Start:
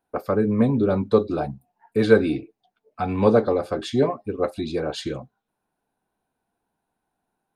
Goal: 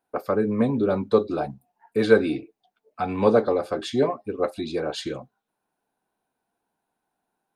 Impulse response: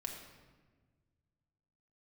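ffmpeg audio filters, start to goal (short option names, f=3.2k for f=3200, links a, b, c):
-af "lowshelf=f=140:g=-10.5"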